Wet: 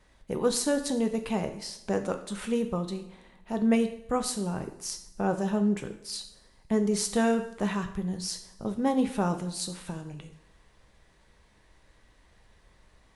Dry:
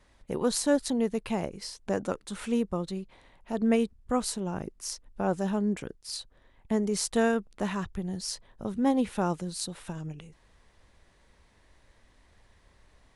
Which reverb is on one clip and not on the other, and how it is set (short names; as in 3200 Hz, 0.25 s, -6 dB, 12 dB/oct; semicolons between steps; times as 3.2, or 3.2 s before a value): two-slope reverb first 0.58 s, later 1.7 s, from -19 dB, DRR 6 dB